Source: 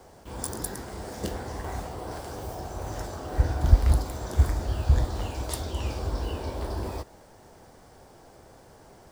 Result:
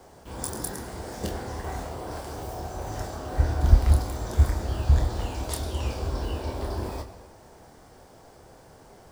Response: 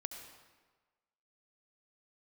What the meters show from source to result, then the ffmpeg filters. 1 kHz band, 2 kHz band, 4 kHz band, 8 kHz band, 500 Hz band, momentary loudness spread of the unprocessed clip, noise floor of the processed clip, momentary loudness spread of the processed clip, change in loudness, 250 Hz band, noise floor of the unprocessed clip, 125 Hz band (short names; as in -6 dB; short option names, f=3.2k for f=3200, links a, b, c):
+1.0 dB, +1.0 dB, +1.0 dB, +1.0 dB, +1.0 dB, 13 LU, -52 dBFS, 13 LU, +1.0 dB, +1.0 dB, -53 dBFS, +1.5 dB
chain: -filter_complex "[0:a]asplit=2[a][b];[1:a]atrim=start_sample=2205,adelay=27[c];[b][c]afir=irnorm=-1:irlink=0,volume=-4dB[d];[a][d]amix=inputs=2:normalize=0"